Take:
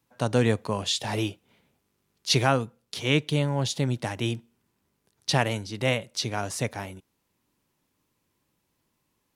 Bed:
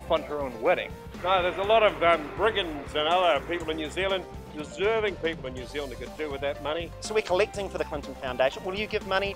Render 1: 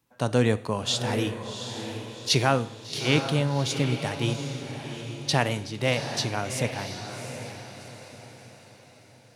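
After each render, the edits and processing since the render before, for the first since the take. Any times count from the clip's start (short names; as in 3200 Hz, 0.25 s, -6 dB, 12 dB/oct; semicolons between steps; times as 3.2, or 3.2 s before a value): on a send: diffused feedback echo 0.742 s, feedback 44%, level -8 dB; on the sum: Schroeder reverb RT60 0.71 s, combs from 25 ms, DRR 16.5 dB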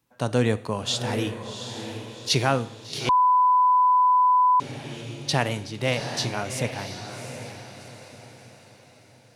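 3.09–4.6 bleep 1000 Hz -15 dBFS; 5.98–6.43 doubler 24 ms -6.5 dB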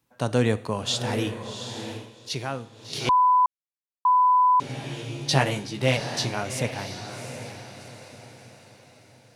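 1.92–2.91 dip -9 dB, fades 0.19 s; 3.46–4.05 mute; 4.68–5.97 doubler 15 ms -3 dB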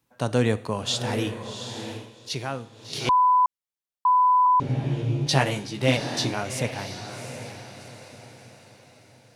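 4.46–5.27 tilt -3.5 dB/oct; 5.88–6.34 small resonant body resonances 290/3600 Hz, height 10 dB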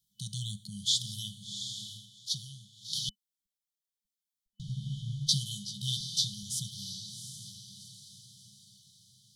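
bell 100 Hz -12.5 dB 1.8 oct; FFT band-reject 210–3000 Hz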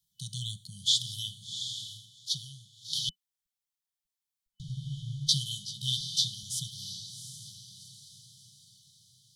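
elliptic band-stop 170–730 Hz; dynamic EQ 3000 Hz, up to +5 dB, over -46 dBFS, Q 1.8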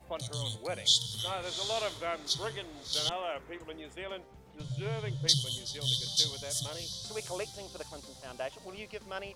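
add bed -14 dB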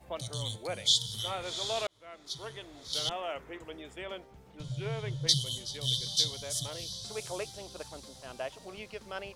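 1.87–3.58 fade in equal-power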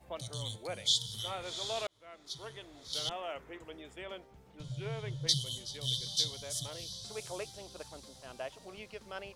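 gain -3.5 dB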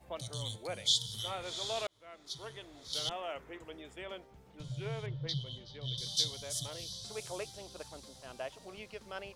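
5.06–5.98 air absorption 300 m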